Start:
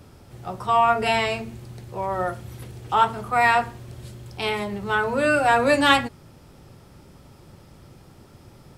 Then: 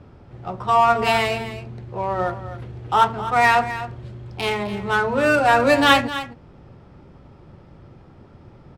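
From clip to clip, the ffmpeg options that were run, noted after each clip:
-af "adynamicsmooth=sensitivity=4:basefreq=2500,aecho=1:1:258:0.224,volume=1.33"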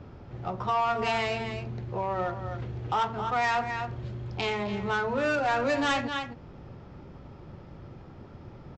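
-af "aresample=16000,asoftclip=type=tanh:threshold=0.251,aresample=44100,acompressor=threshold=0.0282:ratio=2"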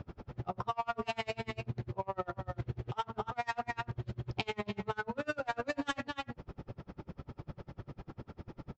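-af "acompressor=threshold=0.02:ratio=5,aeval=exprs='val(0)*pow(10,-34*(0.5-0.5*cos(2*PI*10*n/s))/20)':c=same,volume=1.78"

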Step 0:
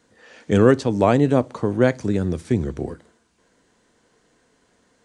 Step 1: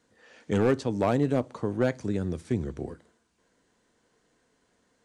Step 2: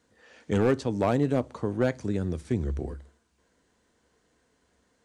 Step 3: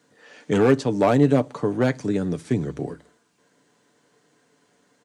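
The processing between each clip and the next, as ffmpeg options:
-af "volume=2.66,asoftclip=hard,volume=0.376,volume=0.422"
-af "equalizer=f=69:t=o:w=0.28:g=14.5"
-af "highpass=f=120:w=0.5412,highpass=f=120:w=1.3066,aecho=1:1:6.9:0.37,volume=2"

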